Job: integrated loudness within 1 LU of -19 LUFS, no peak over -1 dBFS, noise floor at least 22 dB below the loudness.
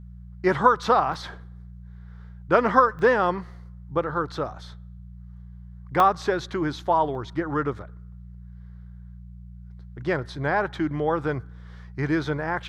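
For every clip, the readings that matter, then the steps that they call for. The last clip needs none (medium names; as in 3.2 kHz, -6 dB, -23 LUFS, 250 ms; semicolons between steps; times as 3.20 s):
dropouts 4; longest dropout 1.1 ms; hum 60 Hz; highest harmonic 180 Hz; hum level -40 dBFS; loudness -24.0 LUFS; peak level -3.5 dBFS; loudness target -19.0 LUFS
-> interpolate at 1.14/2.99/6.00/7.15 s, 1.1 ms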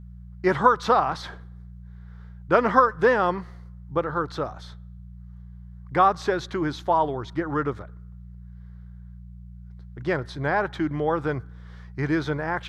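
dropouts 0; hum 60 Hz; highest harmonic 180 Hz; hum level -40 dBFS
-> de-hum 60 Hz, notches 3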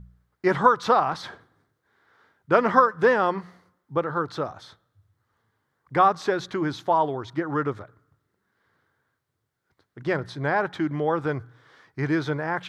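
hum not found; loudness -24.5 LUFS; peak level -3.5 dBFS; loudness target -19.0 LUFS
-> trim +5.5 dB; peak limiter -1 dBFS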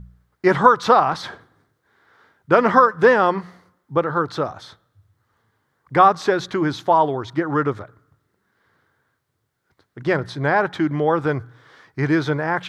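loudness -19.0 LUFS; peak level -1.0 dBFS; noise floor -73 dBFS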